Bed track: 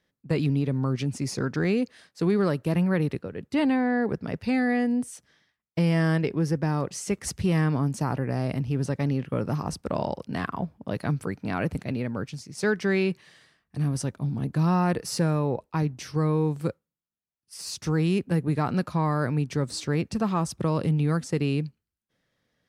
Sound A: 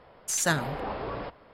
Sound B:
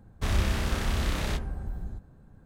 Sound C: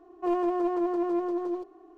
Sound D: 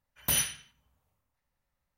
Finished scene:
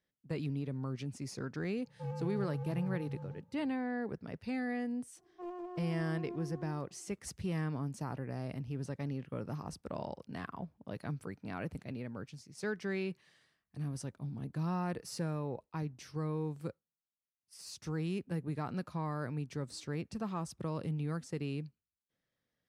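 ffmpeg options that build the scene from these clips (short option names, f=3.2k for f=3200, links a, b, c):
-filter_complex "[3:a]asplit=2[a][b];[0:a]volume=-12.5dB[c];[a]afreqshift=-210,atrim=end=1.97,asetpts=PTS-STARTPTS,volume=-13dB,afade=t=in:d=0.004:c=hsin,afade=t=out:st=1.966:d=0.004:c=hsin,adelay=1770[d];[b]atrim=end=1.97,asetpts=PTS-STARTPTS,volume=-17dB,afade=t=in:d=0.004:c=hsin,afade=t=out:st=1.966:d=0.004:c=hsin,adelay=5160[e];[c][d][e]amix=inputs=3:normalize=0"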